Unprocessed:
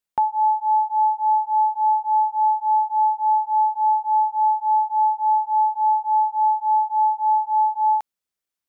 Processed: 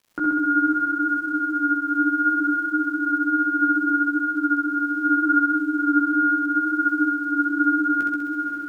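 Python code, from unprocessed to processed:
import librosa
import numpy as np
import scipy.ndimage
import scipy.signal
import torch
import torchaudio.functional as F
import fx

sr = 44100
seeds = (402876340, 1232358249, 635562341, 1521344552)

p1 = fx.over_compress(x, sr, threshold_db=-25.0, ratio=-1.0)
p2 = x + (p1 * 10.0 ** (3.0 / 20.0))
p3 = fx.chorus_voices(p2, sr, voices=4, hz=0.64, base_ms=15, depth_ms=4.0, mix_pct=45)
p4 = fx.dmg_crackle(p3, sr, seeds[0], per_s=250.0, level_db=-41.0)
p5 = p4 + fx.echo_diffused(p4, sr, ms=511, feedback_pct=49, wet_db=-7.0, dry=0)
p6 = p5 * np.sin(2.0 * np.pi * 560.0 * np.arange(len(p5)) / sr)
p7 = fx.room_flutter(p6, sr, wall_m=11.2, rt60_s=1.4)
y = p7 * 10.0 ** (-3.5 / 20.0)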